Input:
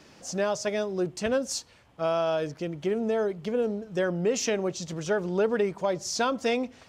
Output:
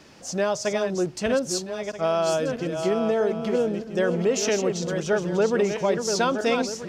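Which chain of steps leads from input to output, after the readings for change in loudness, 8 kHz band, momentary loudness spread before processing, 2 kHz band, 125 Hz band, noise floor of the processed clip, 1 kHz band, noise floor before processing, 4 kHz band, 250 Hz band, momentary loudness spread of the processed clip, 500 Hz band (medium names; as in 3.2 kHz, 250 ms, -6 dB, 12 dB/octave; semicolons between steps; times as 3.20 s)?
+4.0 dB, +4.0 dB, 6 LU, +4.0 dB, +4.0 dB, -38 dBFS, +4.0 dB, -56 dBFS, +4.0 dB, +4.0 dB, 5 LU, +4.0 dB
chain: backward echo that repeats 641 ms, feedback 42%, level -6 dB; trim +3 dB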